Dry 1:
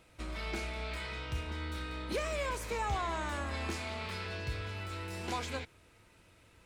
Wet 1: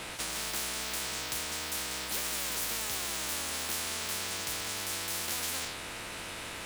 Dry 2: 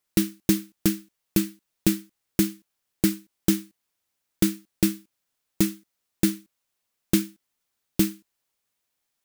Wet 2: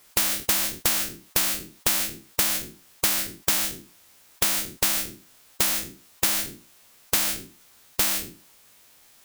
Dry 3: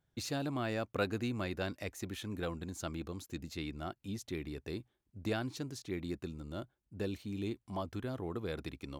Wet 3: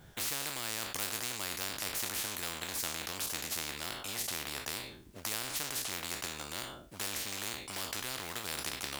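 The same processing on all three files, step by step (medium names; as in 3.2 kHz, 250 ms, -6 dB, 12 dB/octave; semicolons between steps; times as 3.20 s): spectral sustain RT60 0.35 s; in parallel at -8.5 dB: short-mantissa float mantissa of 2-bit; on the sum: spectrum-flattening compressor 10:1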